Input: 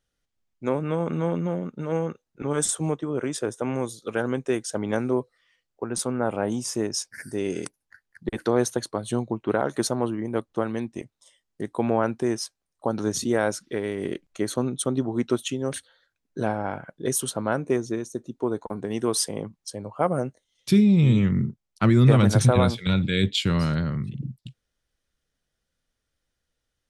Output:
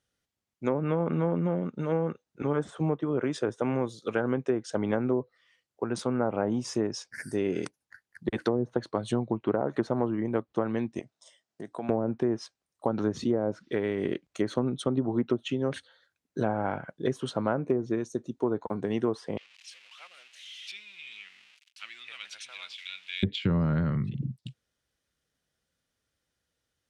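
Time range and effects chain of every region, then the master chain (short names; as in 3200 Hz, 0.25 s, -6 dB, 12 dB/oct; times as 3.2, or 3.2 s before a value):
10.99–11.89 compressor 2:1, threshold -42 dBFS + speaker cabinet 120–8800 Hz, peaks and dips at 670 Hz +9 dB, 1500 Hz +3 dB, 5400 Hz +3 dB
19.37–23.23 zero-crossing step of -29.5 dBFS + ladder band-pass 3000 Hz, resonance 55%
whole clip: HPF 73 Hz; treble ducked by the level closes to 330 Hz, closed at -16 dBFS; compressor, threshold -21 dBFS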